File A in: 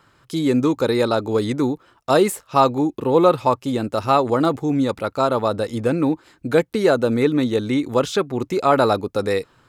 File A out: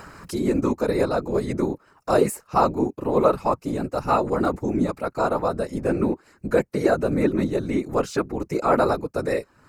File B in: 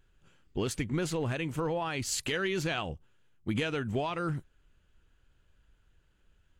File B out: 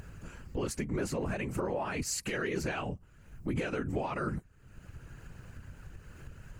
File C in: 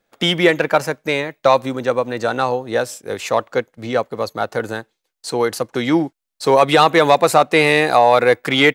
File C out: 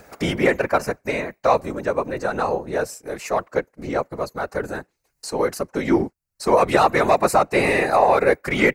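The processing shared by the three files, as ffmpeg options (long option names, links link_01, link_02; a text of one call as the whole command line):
ffmpeg -i in.wav -af "afftfilt=real='hypot(re,im)*cos(2*PI*random(0))':imag='hypot(re,im)*sin(2*PI*random(1))':win_size=512:overlap=0.75,acompressor=mode=upward:threshold=-30dB:ratio=2.5,equalizer=frequency=3400:width_type=o:width=0.38:gain=-14.5,volume=2.5dB" out.wav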